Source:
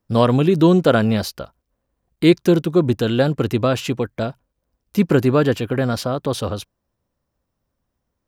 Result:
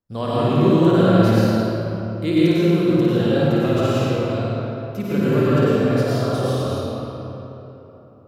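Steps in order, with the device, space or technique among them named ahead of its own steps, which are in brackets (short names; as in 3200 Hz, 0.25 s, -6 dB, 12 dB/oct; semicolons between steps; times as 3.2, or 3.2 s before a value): tunnel (flutter echo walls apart 9.3 m, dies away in 0.68 s; reverb RT60 3.6 s, pre-delay 88 ms, DRR -9 dB); gain -12 dB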